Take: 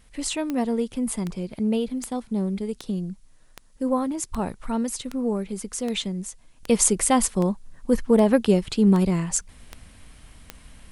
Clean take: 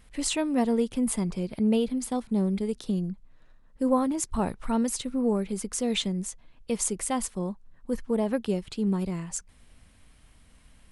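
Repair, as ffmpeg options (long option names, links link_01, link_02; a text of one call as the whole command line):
ffmpeg -i in.wav -af "adeclick=threshold=4,agate=range=-21dB:threshold=-42dB,asetnsamples=nb_out_samples=441:pad=0,asendcmd='6.63 volume volume -9dB',volume=0dB" out.wav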